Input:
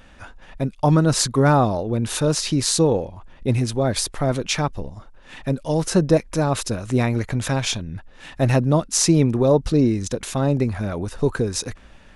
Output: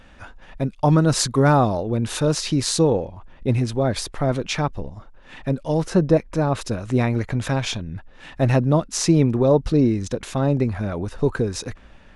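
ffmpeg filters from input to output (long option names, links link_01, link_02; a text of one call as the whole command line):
ffmpeg -i in.wav -af "asetnsamples=nb_out_samples=441:pad=0,asendcmd='1.01 lowpass f 10000;1.8 lowpass f 6300;2.9 lowpass f 3600;5.87 lowpass f 2100;6.61 lowpass f 3800',lowpass=frequency=6100:poles=1" out.wav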